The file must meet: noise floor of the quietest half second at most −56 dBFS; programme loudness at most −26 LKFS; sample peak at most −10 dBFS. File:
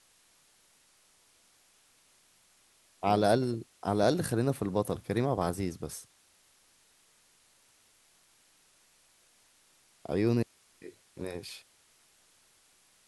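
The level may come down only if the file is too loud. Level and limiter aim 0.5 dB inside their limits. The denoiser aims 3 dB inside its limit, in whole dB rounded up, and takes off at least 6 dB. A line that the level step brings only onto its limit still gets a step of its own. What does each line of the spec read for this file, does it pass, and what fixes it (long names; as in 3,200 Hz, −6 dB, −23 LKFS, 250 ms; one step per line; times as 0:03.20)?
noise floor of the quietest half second −66 dBFS: in spec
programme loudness −31.0 LKFS: in spec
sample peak −11.0 dBFS: in spec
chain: no processing needed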